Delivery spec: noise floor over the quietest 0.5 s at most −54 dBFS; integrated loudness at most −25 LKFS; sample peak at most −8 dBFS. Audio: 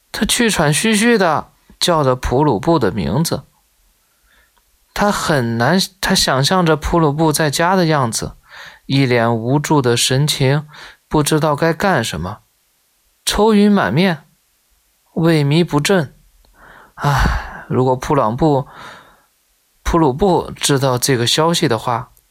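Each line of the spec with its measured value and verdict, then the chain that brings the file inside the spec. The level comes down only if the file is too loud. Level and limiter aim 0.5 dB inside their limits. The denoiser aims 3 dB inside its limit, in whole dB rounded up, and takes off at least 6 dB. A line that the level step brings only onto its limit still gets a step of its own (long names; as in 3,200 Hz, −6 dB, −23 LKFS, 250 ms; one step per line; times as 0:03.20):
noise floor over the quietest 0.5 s −60 dBFS: in spec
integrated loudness −15.5 LKFS: out of spec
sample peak −3.5 dBFS: out of spec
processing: level −10 dB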